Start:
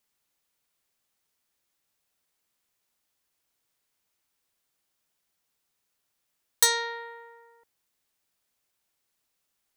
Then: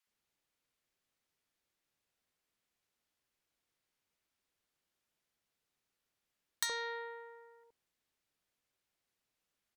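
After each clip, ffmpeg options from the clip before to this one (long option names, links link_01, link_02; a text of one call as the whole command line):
ffmpeg -i in.wav -filter_complex "[0:a]aemphasis=mode=reproduction:type=cd,acompressor=threshold=-30dB:ratio=4,acrossover=split=940[link_01][link_02];[link_01]adelay=70[link_03];[link_03][link_02]amix=inputs=2:normalize=0,volume=-3dB" out.wav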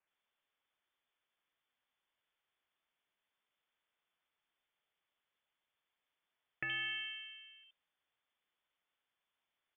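ffmpeg -i in.wav -af "lowpass=frequency=3100:width_type=q:width=0.5098,lowpass=frequency=3100:width_type=q:width=0.6013,lowpass=frequency=3100:width_type=q:width=0.9,lowpass=frequency=3100:width_type=q:width=2.563,afreqshift=-3600,volume=1.5dB" out.wav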